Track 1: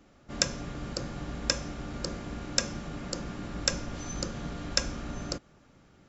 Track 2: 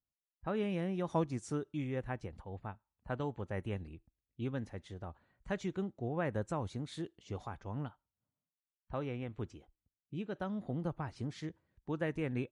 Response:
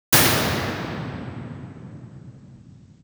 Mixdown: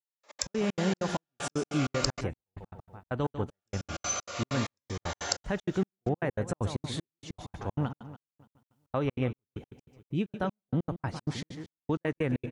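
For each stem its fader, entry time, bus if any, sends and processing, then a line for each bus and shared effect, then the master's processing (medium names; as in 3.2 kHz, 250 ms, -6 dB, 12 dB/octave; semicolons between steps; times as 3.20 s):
+2.0 dB, 0.00 s, muted 2.21–3.54 s, no send, no echo send, high-pass 570 Hz 24 dB/octave; compression 6:1, threshold -39 dBFS, peak gain reduction 18 dB; Shepard-style phaser falling 0.45 Hz
-2.0 dB, 0.00 s, no send, echo send -11 dB, peak limiter -29 dBFS, peak gain reduction 9 dB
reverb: none
echo: feedback delay 144 ms, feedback 52%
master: level rider gain up to 12.5 dB; trance gate "...x.x.xx.xx.xx" 193 bpm -60 dB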